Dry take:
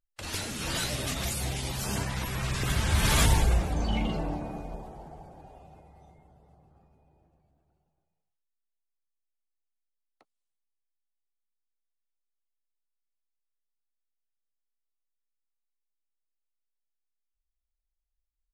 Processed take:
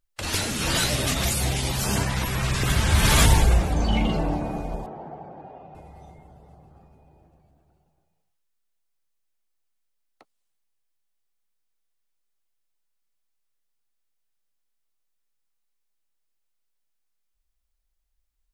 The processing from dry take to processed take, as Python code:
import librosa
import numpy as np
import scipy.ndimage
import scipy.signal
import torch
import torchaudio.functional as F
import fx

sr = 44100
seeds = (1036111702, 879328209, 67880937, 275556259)

p1 = fx.bandpass_edges(x, sr, low_hz=160.0, high_hz=2100.0, at=(4.86, 5.75))
p2 = fx.rider(p1, sr, range_db=5, speed_s=2.0)
y = p1 + (p2 * 10.0 ** (0.0 / 20.0))